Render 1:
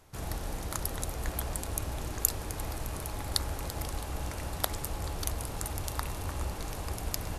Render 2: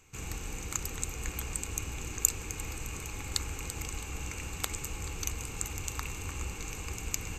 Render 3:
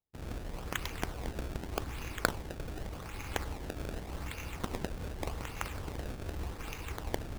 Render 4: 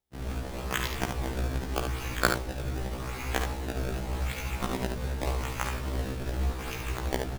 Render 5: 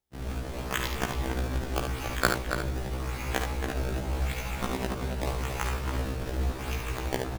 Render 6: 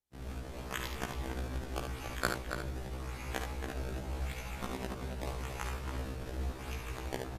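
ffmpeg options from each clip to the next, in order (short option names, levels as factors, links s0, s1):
-af "superequalizer=8b=0.282:9b=0.631:12b=3.16:15b=3.16:16b=0.316,volume=0.708"
-af "acrusher=samples=25:mix=1:aa=0.000001:lfo=1:lforange=40:lforate=0.85,agate=range=0.0224:threshold=0.0141:ratio=3:detection=peak,volume=0.841"
-filter_complex "[0:a]asplit=2[s0][s1];[s1]aecho=0:1:49|73:0.266|0.501[s2];[s0][s2]amix=inputs=2:normalize=0,afftfilt=real='re*1.73*eq(mod(b,3),0)':imag='im*1.73*eq(mod(b,3),0)':win_size=2048:overlap=0.75,volume=2.51"
-filter_complex "[0:a]asplit=2[s0][s1];[s1]adelay=279.9,volume=0.501,highshelf=f=4000:g=-6.3[s2];[s0][s2]amix=inputs=2:normalize=0"
-af "volume=0.398" -ar 32000 -c:a wmav2 -b:a 128k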